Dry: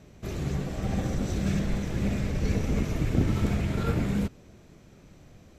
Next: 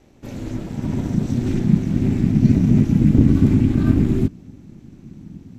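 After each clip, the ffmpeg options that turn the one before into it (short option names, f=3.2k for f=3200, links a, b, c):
-af "asubboost=boost=10:cutoff=110,aeval=exprs='val(0)*sin(2*PI*180*n/s)':c=same,volume=2dB"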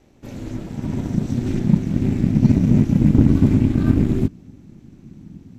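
-af "aeval=exprs='0.891*(cos(1*acos(clip(val(0)/0.891,-1,1)))-cos(1*PI/2))+0.0251*(cos(7*acos(clip(val(0)/0.891,-1,1)))-cos(7*PI/2))':c=same"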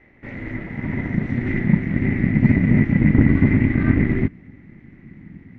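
-af "lowpass=f=2k:t=q:w=16,volume=-1dB"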